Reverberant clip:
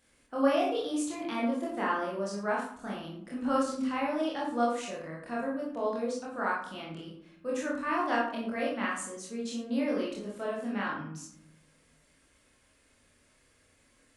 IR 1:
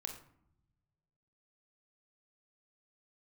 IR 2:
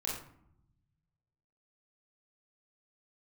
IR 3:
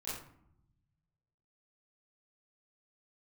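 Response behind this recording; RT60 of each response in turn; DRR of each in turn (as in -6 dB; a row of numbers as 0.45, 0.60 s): 2; 0.70, 0.70, 0.70 s; 3.5, -5.0, -12.5 dB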